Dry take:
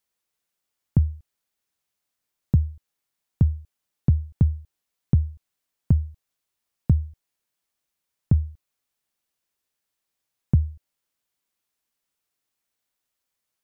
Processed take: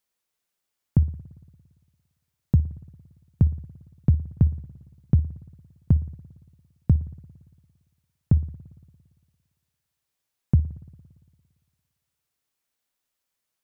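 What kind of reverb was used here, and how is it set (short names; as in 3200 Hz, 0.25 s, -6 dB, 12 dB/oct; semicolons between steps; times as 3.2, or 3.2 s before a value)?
spring tank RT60 1.7 s, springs 57 ms, DRR 17 dB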